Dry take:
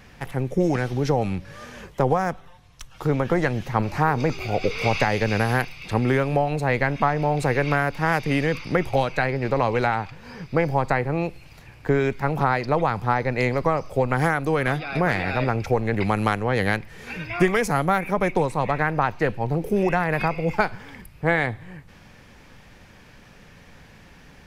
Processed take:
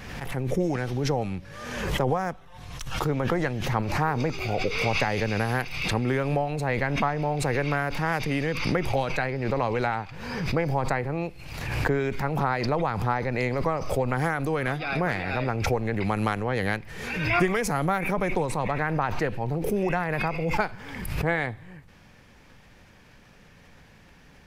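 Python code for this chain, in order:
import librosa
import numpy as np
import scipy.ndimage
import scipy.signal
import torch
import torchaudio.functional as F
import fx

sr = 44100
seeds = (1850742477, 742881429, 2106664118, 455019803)

y = fx.pre_swell(x, sr, db_per_s=40.0)
y = y * librosa.db_to_amplitude(-5.0)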